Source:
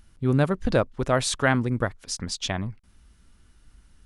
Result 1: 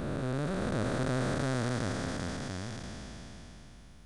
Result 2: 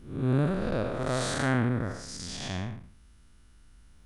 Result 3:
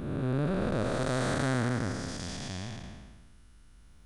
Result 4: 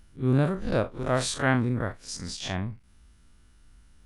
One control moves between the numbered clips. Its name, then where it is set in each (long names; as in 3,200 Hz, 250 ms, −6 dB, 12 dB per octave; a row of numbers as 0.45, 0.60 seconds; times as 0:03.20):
spectrum smeared in time, width: 1,660, 250, 634, 89 milliseconds